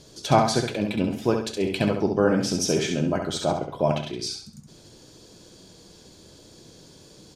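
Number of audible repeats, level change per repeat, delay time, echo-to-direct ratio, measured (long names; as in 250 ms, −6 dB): 4, −9.0 dB, 67 ms, −5.0 dB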